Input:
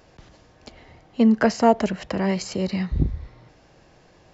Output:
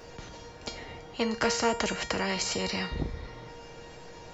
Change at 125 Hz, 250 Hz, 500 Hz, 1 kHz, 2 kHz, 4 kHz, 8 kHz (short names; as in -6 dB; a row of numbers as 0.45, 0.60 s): -10.5 dB, -13.5 dB, -7.5 dB, -6.5 dB, -0.5 dB, +4.5 dB, n/a